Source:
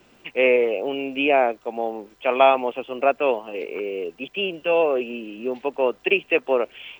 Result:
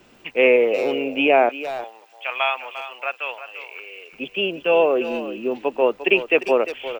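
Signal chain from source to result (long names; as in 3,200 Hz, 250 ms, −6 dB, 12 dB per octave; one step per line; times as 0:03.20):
0:01.49–0:04.13: high-pass filter 1,500 Hz 12 dB per octave
far-end echo of a speakerphone 350 ms, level −11 dB
level +2.5 dB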